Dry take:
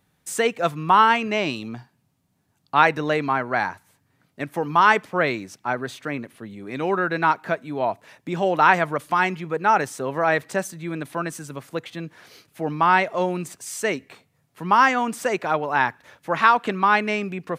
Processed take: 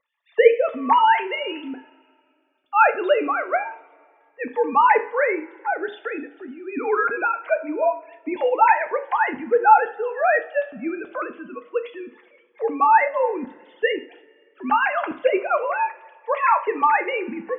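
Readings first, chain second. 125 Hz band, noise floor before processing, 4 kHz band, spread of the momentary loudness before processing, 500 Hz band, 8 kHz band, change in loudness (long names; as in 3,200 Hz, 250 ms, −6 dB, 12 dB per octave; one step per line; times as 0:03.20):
below −20 dB, −68 dBFS, can't be measured, 15 LU, +3.5 dB, below −40 dB, +1.0 dB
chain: three sine waves on the formant tracks
coupled-rooms reverb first 0.39 s, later 2.2 s, from −21 dB, DRR 6.5 dB
phaser whose notches keep moving one way falling 0.25 Hz
level +2.5 dB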